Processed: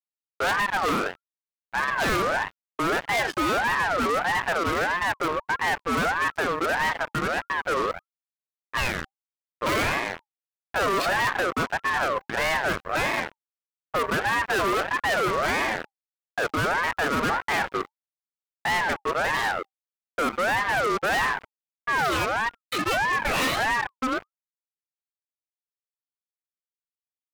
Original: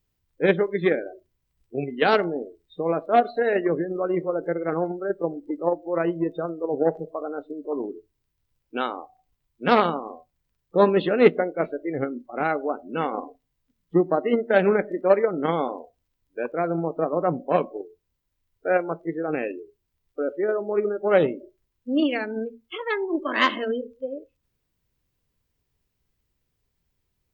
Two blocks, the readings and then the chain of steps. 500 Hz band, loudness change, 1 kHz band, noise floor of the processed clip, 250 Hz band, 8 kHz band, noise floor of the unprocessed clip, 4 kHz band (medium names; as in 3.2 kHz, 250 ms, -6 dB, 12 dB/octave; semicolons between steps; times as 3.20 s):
-7.0 dB, -0.5 dB, +3.0 dB, under -85 dBFS, -6.0 dB, no reading, -77 dBFS, +6.0 dB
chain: fuzz box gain 37 dB, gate -39 dBFS; ring modulator with a swept carrier 1.1 kHz, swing 30%, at 1.6 Hz; trim -6 dB